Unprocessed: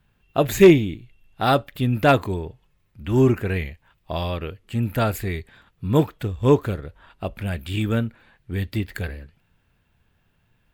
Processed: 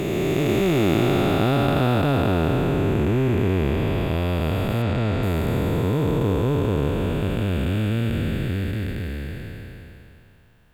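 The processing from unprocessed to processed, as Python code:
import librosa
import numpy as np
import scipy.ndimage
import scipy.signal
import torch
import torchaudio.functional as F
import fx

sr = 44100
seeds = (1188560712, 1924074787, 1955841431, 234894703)

y = fx.spec_blur(x, sr, span_ms=1300.0)
y = fx.lowpass(y, sr, hz=5700.0, slope=12, at=(4.82, 5.23))
y = F.gain(torch.from_numpy(y), 8.5).numpy()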